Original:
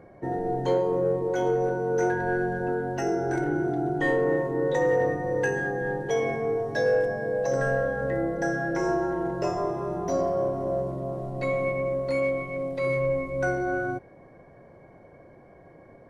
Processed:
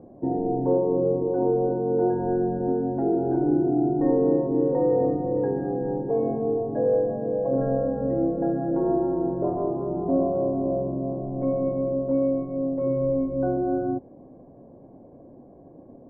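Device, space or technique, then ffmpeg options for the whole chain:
under water: -af "lowpass=f=880:w=0.5412,lowpass=f=880:w=1.3066,equalizer=f=260:t=o:w=0.59:g=12"

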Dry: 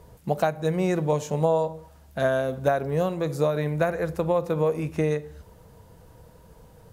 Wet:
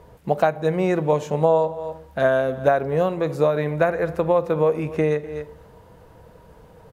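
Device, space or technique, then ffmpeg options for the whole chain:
ducked delay: -filter_complex "[0:a]bass=f=250:g=-5,treble=f=4k:g=-10,asplit=3[a][b][c];[b]adelay=249,volume=-7.5dB[d];[c]apad=whole_len=316260[e];[d][e]sidechaincompress=threshold=-42dB:ratio=8:attack=16:release=168[f];[a][f]amix=inputs=2:normalize=0,volume=5dB"

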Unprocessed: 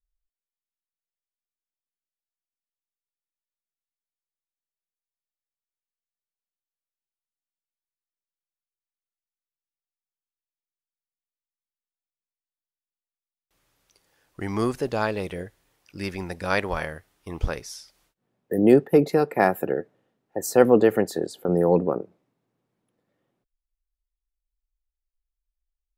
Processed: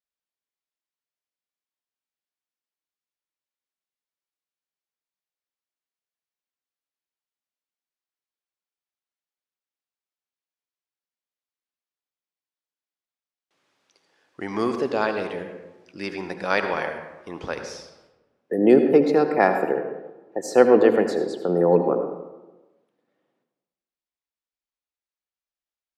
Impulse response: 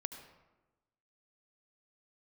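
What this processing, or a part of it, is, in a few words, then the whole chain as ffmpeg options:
supermarket ceiling speaker: -filter_complex "[0:a]highpass=230,lowpass=5.6k[a];[1:a]atrim=start_sample=2205[b];[a][b]afir=irnorm=-1:irlink=0,volume=4dB"

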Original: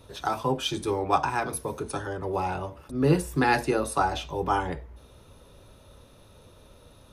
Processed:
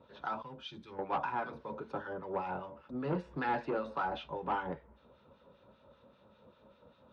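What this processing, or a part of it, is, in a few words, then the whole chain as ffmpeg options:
guitar amplifier with harmonic tremolo: -filter_complex "[0:a]acrossover=split=1300[a][b];[a]aeval=exprs='val(0)*(1-0.7/2+0.7/2*cos(2*PI*5.1*n/s))':c=same[c];[b]aeval=exprs='val(0)*(1-0.7/2-0.7/2*cos(2*PI*5.1*n/s))':c=same[d];[c][d]amix=inputs=2:normalize=0,asoftclip=type=tanh:threshold=-23dB,highpass=87,equalizer=f=99:t=q:w=4:g=-7,equalizer=f=210:t=q:w=4:g=10,equalizer=f=540:t=q:w=4:g=8,equalizer=f=940:t=q:w=4:g=7,equalizer=f=1.4k:t=q:w=4:g=6,lowpass=f=3.8k:w=0.5412,lowpass=f=3.8k:w=1.3066,asettb=1/sr,asplit=3[e][f][g];[e]atrim=end=0.424[h];[f]atrim=start=0.42:end=0.99,asetpts=PTS-STARTPTS,afade=t=in:d=0.004:c=qsin,afade=t=out:st=0.566:d=0.004:c=qsin,equalizer=f=590:w=0.31:g=-13.5[i];[g]atrim=start=0.986[j];[h][i]acrossfade=d=0.004:c1=hsin:c2=qsin[k];[k][j]acrossfade=d=0.004:c1=qsin:c2=hsin,volume=-8dB"

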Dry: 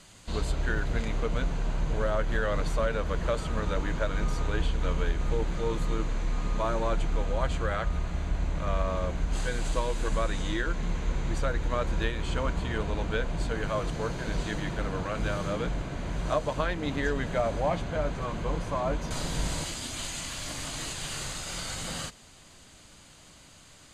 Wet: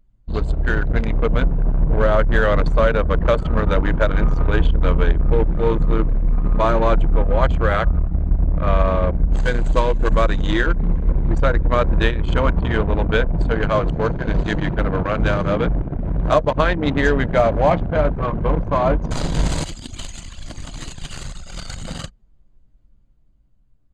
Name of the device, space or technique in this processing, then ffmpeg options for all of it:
voice memo with heavy noise removal: -af "anlmdn=15.8,dynaudnorm=f=160:g=13:m=3dB,volume=9dB"

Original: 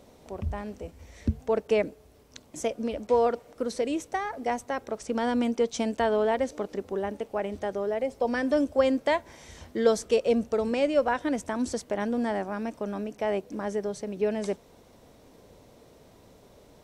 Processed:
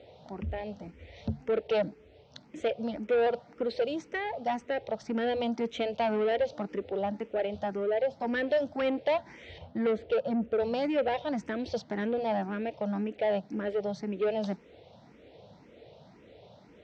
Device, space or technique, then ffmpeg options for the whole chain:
barber-pole phaser into a guitar amplifier: -filter_complex "[0:a]asettb=1/sr,asplit=3[a][b][c];[a]atrim=end=9.584[d];[b]atrim=start=9.58:end=10.6,asetpts=PTS-STARTPTS,afade=t=in:d=0.004:c=qsin,afade=t=out:st=1.016:d=0.004:c=qsin,lowpass=f=1.3k:p=1[e];[c]atrim=start=10.596[f];[d][e]acrossfade=d=0.004:c1=hsin:c2=qsin[g];[g][f]acrossfade=d=0.004:c1=qsin:c2=hsin,asplit=2[h][i];[i]afreqshift=1.9[j];[h][j]amix=inputs=2:normalize=1,asoftclip=type=tanh:threshold=-26.5dB,highpass=100,equalizer=f=260:t=q:w=4:g=-6,equalizer=f=380:t=q:w=4:g=-4,equalizer=f=1.1k:t=q:w=4:g=-10,equalizer=f=1.6k:t=q:w=4:g=-4,lowpass=f=4.1k:w=0.5412,lowpass=f=4.1k:w=1.3066,volume=6dB"

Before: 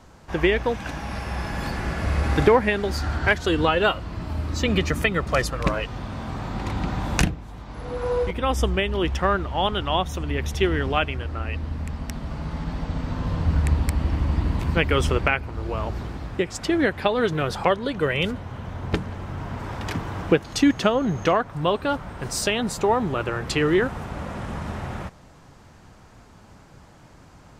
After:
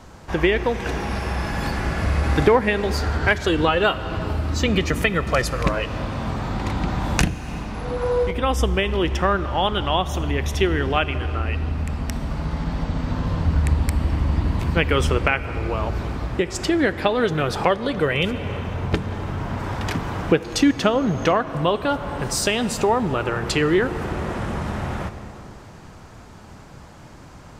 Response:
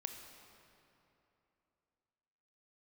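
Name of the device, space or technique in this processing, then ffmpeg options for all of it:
ducked reverb: -filter_complex "[0:a]asplit=3[a][b][c];[1:a]atrim=start_sample=2205[d];[b][d]afir=irnorm=-1:irlink=0[e];[c]apad=whole_len=1216906[f];[e][f]sidechaincompress=threshold=-31dB:ratio=3:attack=30:release=259,volume=5.5dB[g];[a][g]amix=inputs=2:normalize=0,volume=-1.5dB"

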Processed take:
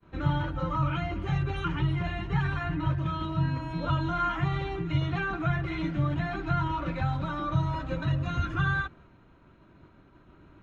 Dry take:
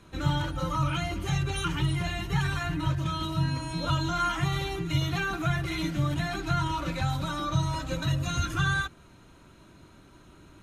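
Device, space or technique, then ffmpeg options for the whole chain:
hearing-loss simulation: -af "lowpass=2.2k,agate=range=-33dB:threshold=-50dB:ratio=3:detection=peak"

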